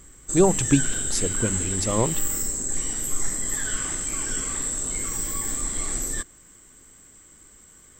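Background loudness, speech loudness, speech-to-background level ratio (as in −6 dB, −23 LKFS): −25.5 LKFS, −24.5 LKFS, 1.0 dB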